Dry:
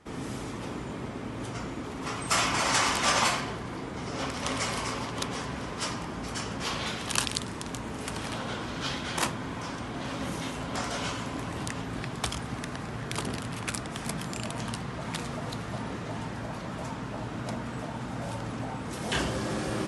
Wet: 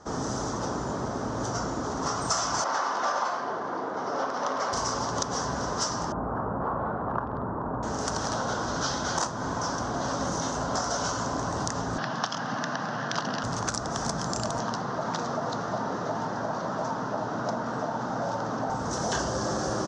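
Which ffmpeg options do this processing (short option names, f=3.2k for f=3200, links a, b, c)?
-filter_complex "[0:a]asettb=1/sr,asplit=3[a][b][c];[a]atrim=end=2.644[d];[b]atrim=start=2.64:end=4.73,asetpts=PTS-STARTPTS,afade=t=in:d=0.004:c=qsin,afade=t=out:st=2.086:d=0.004:c=qsin,highpass=310,lowpass=2.7k[e];[c]atrim=start=4.726[f];[d][e]acrossfade=d=0.004:c1=hsin:c2=qsin[g];[g][f]acrossfade=d=0.004:c1=qsin:c2=hsin,asettb=1/sr,asplit=3[h][i][j];[h]atrim=end=6.124[k];[i]atrim=start=6.12:end=7.83,asetpts=PTS-STARTPTS,afade=t=in:d=0.004:c=qsin,afade=t=out:st=1.706:d=0.004:c=qsin,lowpass=f=1.3k:w=0.5412,lowpass=f=1.3k:w=1.3066[l];[j]atrim=start=7.826[m];[k][l]acrossfade=d=0.004:c1=hsin:c2=qsin[n];[n][m]acrossfade=d=0.004:c1=qsin:c2=hsin,asettb=1/sr,asplit=3[o][p][q];[o]atrim=end=11.984[r];[p]atrim=start=11.98:end=13.44,asetpts=PTS-STARTPTS,afade=t=in:d=0.004:c=qsin,afade=t=out:st=1.456:d=0.004:c=qsin,highpass=f=150:w=0.5412,highpass=f=150:w=1.3066,equalizer=f=400:t=q:w=4:g=-10,equalizer=f=1.7k:t=q:w=4:g=6,equalizer=f=2.9k:t=q:w=4:g=9,lowpass=f=5.2k:w=0.5412,lowpass=f=5.2k:w=1.3066[s];[q]atrim=start=13.436[t];[r][s]acrossfade=d=0.004:c1=hsin:c2=qsin[u];[u][t]acrossfade=d=0.004:c1=qsin:c2=hsin,asettb=1/sr,asplit=3[v][w][x];[v]atrim=end=14.594[y];[w]atrim=start=14.59:end=18.7,asetpts=PTS-STARTPTS,afade=t=in:d=0.004:c=qsin,afade=t=out:st=4.106:d=0.004:c=qsin,highpass=160,lowpass=4.3k[z];[x]atrim=start=18.696[aa];[y][z]acrossfade=d=0.004:c1=hsin:c2=qsin[ab];[ab][aa]acrossfade=d=0.004:c1=qsin:c2=hsin,firequalizer=gain_entry='entry(310,0);entry(650,7);entry(1500,4);entry(2300,-15);entry(3300,-5);entry(6000,12);entry(11000,-24)':delay=0.05:min_phase=1,acompressor=threshold=-30dB:ratio=5,volume=4.5dB"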